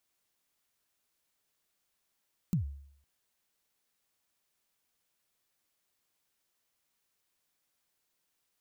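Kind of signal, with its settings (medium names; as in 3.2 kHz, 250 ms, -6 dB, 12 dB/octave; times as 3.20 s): kick drum length 0.51 s, from 200 Hz, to 70 Hz, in 114 ms, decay 0.66 s, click on, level -23 dB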